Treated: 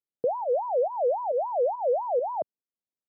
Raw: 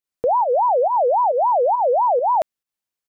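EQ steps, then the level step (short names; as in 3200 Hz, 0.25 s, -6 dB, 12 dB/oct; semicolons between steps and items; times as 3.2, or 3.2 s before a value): Butterworth band-pass 260 Hz, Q 0.56; -4.0 dB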